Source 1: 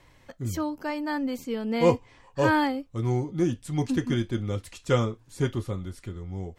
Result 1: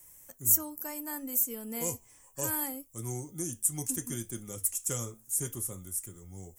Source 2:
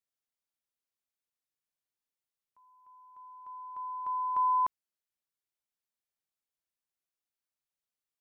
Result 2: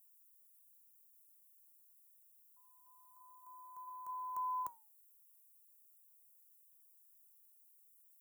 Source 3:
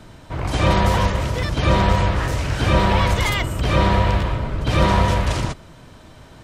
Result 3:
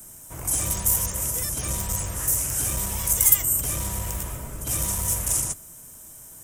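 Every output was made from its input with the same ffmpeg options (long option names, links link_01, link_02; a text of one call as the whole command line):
ffmpeg -i in.wav -filter_complex "[0:a]highshelf=frequency=9800:gain=11,acrossover=split=140|3000[link_01][link_02][link_03];[link_02]acompressor=threshold=-23dB:ratio=10[link_04];[link_01][link_04][link_03]amix=inputs=3:normalize=0,aeval=exprs='clip(val(0),-1,0.168)':channel_layout=same,aexciter=amount=14:drive=8.5:freq=6500,flanger=delay=4.7:depth=2.2:regen=-87:speed=0.69:shape=sinusoidal,volume=-7dB" out.wav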